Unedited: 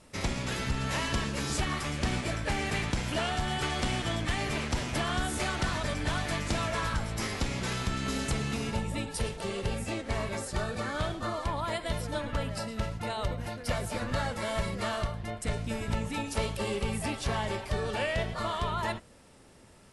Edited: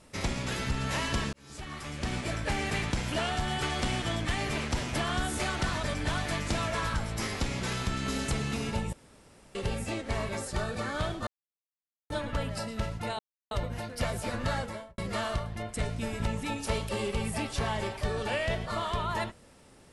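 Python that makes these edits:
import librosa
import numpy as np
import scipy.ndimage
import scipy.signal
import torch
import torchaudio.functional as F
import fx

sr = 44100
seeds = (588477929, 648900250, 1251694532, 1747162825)

y = fx.studio_fade_out(x, sr, start_s=14.25, length_s=0.41)
y = fx.edit(y, sr, fx.fade_in_span(start_s=1.33, length_s=1.06),
    fx.room_tone_fill(start_s=8.93, length_s=0.62),
    fx.silence(start_s=11.27, length_s=0.83),
    fx.insert_silence(at_s=13.19, length_s=0.32), tone=tone)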